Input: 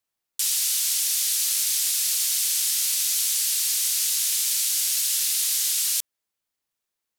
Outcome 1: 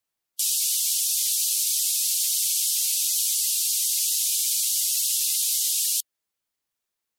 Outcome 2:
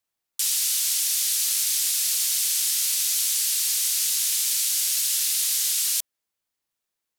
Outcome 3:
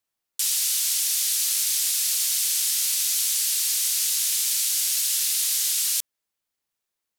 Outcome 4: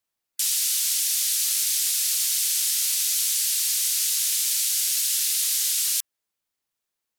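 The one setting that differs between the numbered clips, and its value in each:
spectral gate, under each frame's peak: -15 dB, -40 dB, -55 dB, -30 dB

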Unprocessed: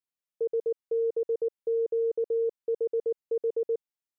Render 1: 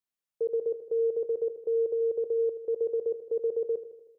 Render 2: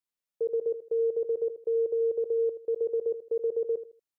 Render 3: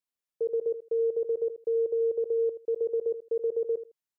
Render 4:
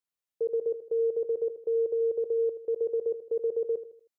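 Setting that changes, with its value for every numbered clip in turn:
feedback delay, feedback: 59%, 27%, 17%, 40%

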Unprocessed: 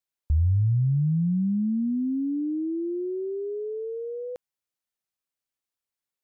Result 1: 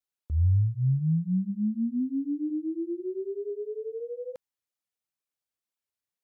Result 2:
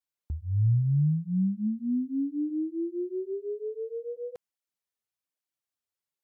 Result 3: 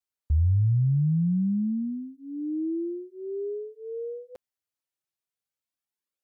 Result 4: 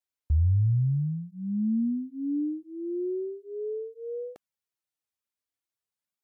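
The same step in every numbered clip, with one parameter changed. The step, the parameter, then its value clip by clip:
cancelling through-zero flanger, nulls at: 2 Hz, 1.2 Hz, 0.23 Hz, 0.38 Hz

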